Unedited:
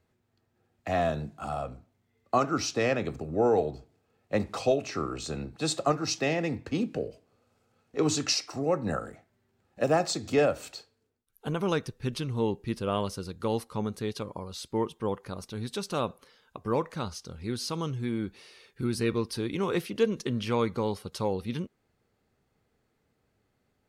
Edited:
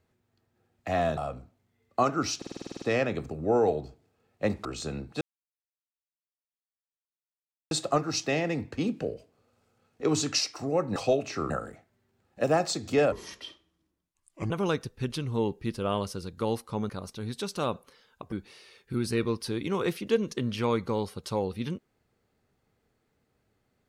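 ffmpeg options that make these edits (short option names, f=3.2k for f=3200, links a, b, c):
-filter_complex "[0:a]asplit=19[a][b][c][d][e][f][g][h][i][j][k][l][m][n][o][p][q][r][s];[a]atrim=end=1.172[t];[b]atrim=start=1.518:end=2.772[u];[c]atrim=start=2.718:end=2.772[v];[d]atrim=start=2.718:end=2.772[w];[e]atrim=start=2.718:end=2.772[x];[f]atrim=start=2.718:end=2.772[y];[g]atrim=start=2.718:end=2.772[z];[h]atrim=start=2.718:end=2.772[aa];[i]atrim=start=2.718:end=2.772[ab];[j]atrim=start=2.718:end=2.772[ac];[k]atrim=start=2.718:end=4.552[ad];[l]atrim=start=5.088:end=5.65,asetpts=PTS-STARTPTS,afade=t=out:st=0.558:d=0.004:c=hsin,apad=pad_dur=2.5[ae];[m]atrim=start=5.65:end=8.902,asetpts=PTS-STARTPTS,afade=t=in:d=0.004:c=hsin[af];[n]atrim=start=4.548:end=5.092[ag];[o]atrim=start=8.898:end=10.524[ah];[p]atrim=start=10.52:end=11.53,asetpts=PTS-STARTPTS,asetrate=32193,aresample=44100,atrim=end_sample=61015,asetpts=PTS-STARTPTS[ai];[q]atrim=start=11.526:end=13.922[aj];[r]atrim=start=15.238:end=16.672[ak];[s]atrim=start=18.208[al];[t][u]acrossfade=d=0.004:c1=hsin:c2=hsin[am];[am][v]acrossfade=d=0.004:c1=hsin:c2=hsin[an];[an][w]acrossfade=d=0.004:c1=hsin:c2=hsin[ao];[ao][x]acrossfade=d=0.004:c1=hsin:c2=hsin[ap];[ap][y]acrossfade=d=0.004:c1=hsin:c2=hsin[aq];[aq][z]acrossfade=d=0.004:c1=hsin:c2=hsin[ar];[ar][aa]acrossfade=d=0.004:c1=hsin:c2=hsin[as];[as][ab]acrossfade=d=0.004:c1=hsin:c2=hsin[at];[at][ac]acrossfade=d=0.004:c1=hsin:c2=hsin[au];[au][ad]acrossfade=d=0.004:c1=hsin:c2=hsin[av];[ae][af]concat=n=2:v=0:a=1[aw];[av][aw]acrossfade=d=0.004:c1=hsin:c2=hsin[ax];[ax][ag]acrossfade=d=0.004:c1=hsin:c2=hsin[ay];[ay][ah]acrossfade=d=0.004:c1=hsin:c2=hsin[az];[az][ai]acrossfade=d=0.004:c1=hsin:c2=hsin[ba];[ba][aj]acrossfade=d=0.004:c1=hsin:c2=hsin[bb];[bb][ak]acrossfade=d=0.004:c1=hsin:c2=hsin[bc];[bc][al]acrossfade=d=0.004:c1=hsin:c2=hsin"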